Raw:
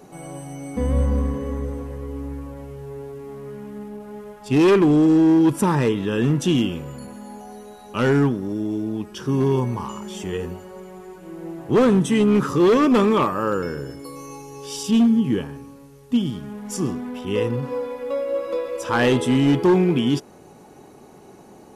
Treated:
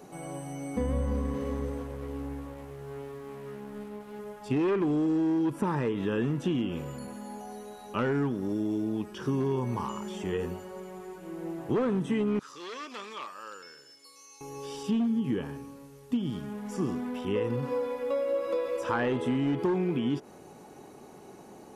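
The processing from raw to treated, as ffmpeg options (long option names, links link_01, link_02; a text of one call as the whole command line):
ffmpeg -i in.wav -filter_complex "[0:a]asettb=1/sr,asplit=3[link_01][link_02][link_03];[link_01]atrim=end=1.064[link_04];[link_02]atrim=start=1.06:end=4.19,asetpts=PTS-STARTPTS,afade=type=in:duration=0.004:curve=qsin,afade=type=out:start_time=3.126:duration=0.004:curve=qsin,aeval=exprs='sgn(val(0))*max(abs(val(0))-0.00668,0)':channel_layout=same[link_05];[link_03]atrim=start=4.186[link_06];[link_04][link_05]acrossfade=duration=0.004:curve1=hsin:curve2=qsin[link_07];[link_07][link_06]acrossfade=duration=0.004:curve1=qsin:curve2=hsin,asettb=1/sr,asplit=3[link_08][link_09][link_10];[link_08]atrim=end=12.394[link_11];[link_09]atrim=start=12.39:end=14.41,asetpts=PTS-STARTPTS,afade=type=in:duration=0.004:curve=qsin,afade=type=out:start_time=2.016:duration=0.004:curve=qsin,bandpass=frequency=5200:width_type=q:width=1.3[link_12];[link_10]atrim=start=14.406[link_13];[link_11][link_12]acrossfade=duration=0.004:curve1=hsin:curve2=qsin[link_14];[link_14][link_13]acrossfade=duration=0.004:curve1=qsin:curve2=hsin,acrossover=split=2600[link_15][link_16];[link_16]acompressor=threshold=-46dB:ratio=4:attack=1:release=60[link_17];[link_15][link_17]amix=inputs=2:normalize=0,lowshelf=frequency=130:gain=-5,acompressor=threshold=-22dB:ratio=10,volume=-2.5dB" out.wav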